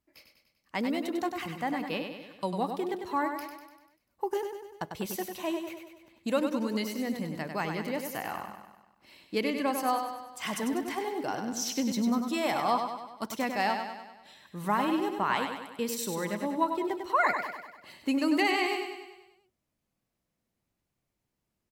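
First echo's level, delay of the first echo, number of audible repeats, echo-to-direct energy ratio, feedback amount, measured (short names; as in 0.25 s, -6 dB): -6.5 dB, 98 ms, 6, -5.0 dB, 55%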